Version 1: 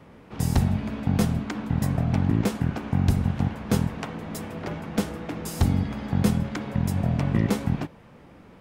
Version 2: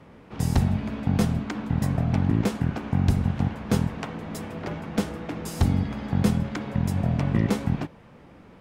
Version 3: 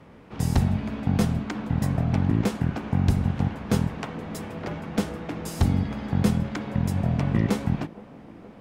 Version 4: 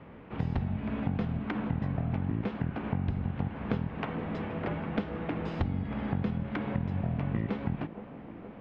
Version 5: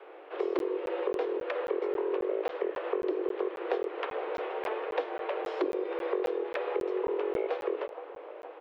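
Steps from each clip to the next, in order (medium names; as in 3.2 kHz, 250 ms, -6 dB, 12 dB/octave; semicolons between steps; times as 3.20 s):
treble shelf 11 kHz -7 dB
feedback echo behind a band-pass 468 ms, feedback 74%, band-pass 500 Hz, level -17.5 dB
low-pass 3.1 kHz 24 dB/octave; compression, threshold -27 dBFS, peak gain reduction 11.5 dB
echo from a far wall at 72 m, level -19 dB; frequency shift +280 Hz; crackling interface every 0.27 s, samples 512, zero, from 0.59 s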